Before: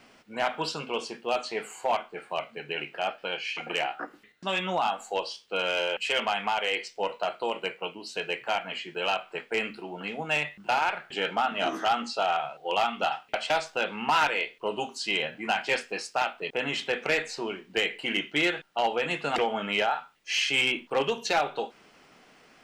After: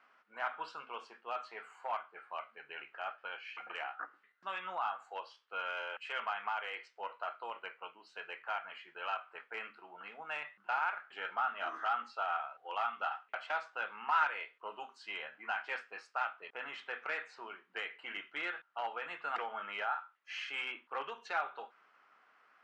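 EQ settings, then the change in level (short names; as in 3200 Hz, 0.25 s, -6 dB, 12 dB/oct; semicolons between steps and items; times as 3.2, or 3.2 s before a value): band-pass 1300 Hz, Q 2.7; -2.5 dB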